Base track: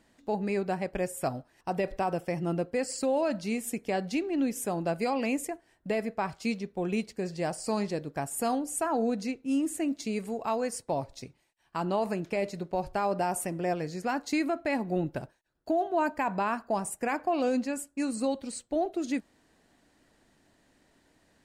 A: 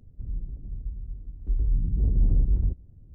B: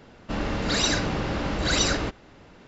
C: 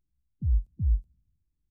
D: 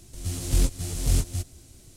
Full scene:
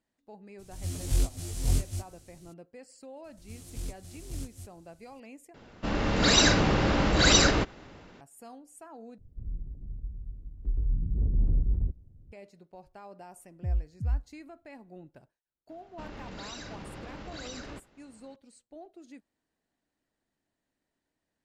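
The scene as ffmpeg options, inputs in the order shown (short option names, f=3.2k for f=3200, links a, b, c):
-filter_complex "[4:a]asplit=2[a][b];[2:a]asplit=2[c][d];[0:a]volume=-19dB[e];[a]flanger=delay=19:depth=4:speed=1.3[f];[c]dynaudnorm=f=230:g=5:m=6dB[g];[d]acompressor=threshold=-26dB:ratio=6:attack=3.2:release=140:knee=1:detection=peak[h];[e]asplit=3[i][j][k];[i]atrim=end=5.544[l];[g]atrim=end=2.67,asetpts=PTS-STARTPTS,volume=-2.5dB[m];[j]atrim=start=8.206:end=9.184[n];[1:a]atrim=end=3.14,asetpts=PTS-STARTPTS,volume=-4dB[o];[k]atrim=start=12.316[p];[f]atrim=end=1.96,asetpts=PTS-STARTPTS,volume=-3dB,afade=t=in:d=0.02,afade=t=out:st=1.94:d=0.02,adelay=580[q];[b]atrim=end=1.96,asetpts=PTS-STARTPTS,volume=-16dB,afade=t=in:d=0.004:c=hsin,afade=t=out:st=1.956:d=0.004:c=hsin,adelay=3240[r];[3:a]atrim=end=1.7,asetpts=PTS-STARTPTS,volume=-4dB,afade=t=in:d=0.004:c=hsin,afade=t=out:st=1.696:d=0.004:c=hsin,adelay=13210[s];[h]atrim=end=2.67,asetpts=PTS-STARTPTS,volume=-12.5dB,afade=t=in:d=0.004:c=hsin,afade=t=out:st=2.666:d=0.004:c=hsin,adelay=15690[t];[l][m]acrossfade=d=0.004:c1=hsin:c2=hsin[u];[u][n]acrossfade=d=0.004:c1=hsin:c2=hsin[v];[v][o]acrossfade=d=0.004:c1=hsin:c2=hsin[w];[w][p]acrossfade=d=0.004:c1=hsin:c2=hsin[x];[x][q][r][s][t]amix=inputs=5:normalize=0"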